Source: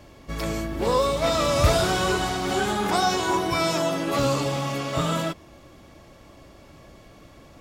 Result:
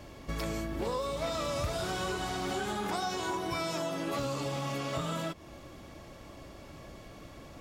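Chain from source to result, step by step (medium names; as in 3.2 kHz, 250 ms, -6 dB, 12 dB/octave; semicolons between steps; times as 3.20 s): compression 5:1, threshold -32 dBFS, peak gain reduction 17 dB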